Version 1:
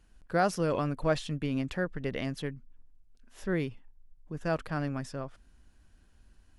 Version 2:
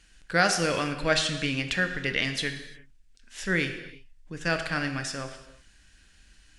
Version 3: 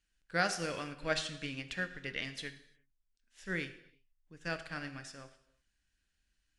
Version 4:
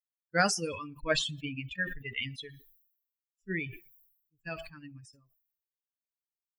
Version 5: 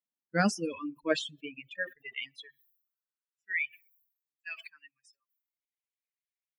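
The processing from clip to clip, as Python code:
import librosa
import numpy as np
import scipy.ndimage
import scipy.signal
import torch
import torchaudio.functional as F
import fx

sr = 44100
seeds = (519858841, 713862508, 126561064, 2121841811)

y1 = fx.band_shelf(x, sr, hz=3800.0, db=14.0, octaves=2.9)
y1 = fx.rev_gated(y1, sr, seeds[0], gate_ms=380, shape='falling', drr_db=6.0)
y2 = fx.upward_expand(y1, sr, threshold_db=-48.0, expansion=1.5)
y2 = y2 * 10.0 ** (-8.0 / 20.0)
y3 = fx.bin_expand(y2, sr, power=3.0)
y3 = fx.sustainer(y3, sr, db_per_s=72.0)
y3 = y3 * 10.0 ** (8.0 / 20.0)
y4 = fx.dereverb_blind(y3, sr, rt60_s=0.9)
y4 = fx.bass_treble(y4, sr, bass_db=6, treble_db=-4)
y4 = fx.filter_sweep_highpass(y4, sr, from_hz=230.0, to_hz=2100.0, start_s=0.53, end_s=3.56, q=3.6)
y4 = y4 * 10.0 ** (-3.0 / 20.0)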